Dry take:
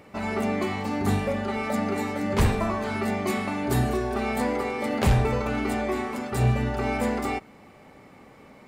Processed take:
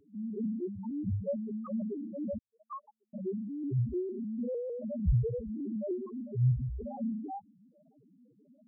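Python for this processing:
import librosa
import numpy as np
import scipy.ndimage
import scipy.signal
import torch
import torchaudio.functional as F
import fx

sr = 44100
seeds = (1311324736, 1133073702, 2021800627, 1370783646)

y = fx.spec_topn(x, sr, count=1)
y = fx.highpass(y, sr, hz=1100.0, slope=24, at=(2.37, 3.13), fade=0.02)
y = fx.vibrato_shape(y, sr, shape='saw_up', rate_hz=6.6, depth_cents=100.0)
y = y * 10.0 ** (1.0 / 20.0)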